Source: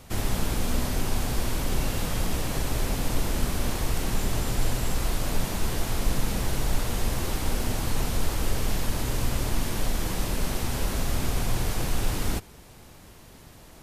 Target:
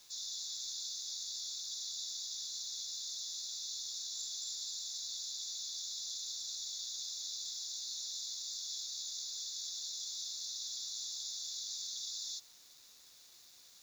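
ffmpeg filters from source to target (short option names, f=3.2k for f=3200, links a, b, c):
-af "afftfilt=real='re*between(b*sr/4096,3400,7300)':imag='im*between(b*sr/4096,3400,7300)':win_size=4096:overlap=0.75,acrusher=bits=9:mix=0:aa=0.000001"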